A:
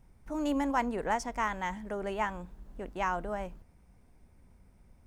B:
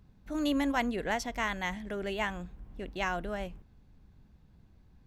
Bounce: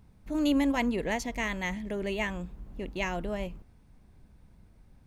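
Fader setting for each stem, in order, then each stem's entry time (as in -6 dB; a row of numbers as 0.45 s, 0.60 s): -2.0 dB, +0.5 dB; 0.00 s, 0.00 s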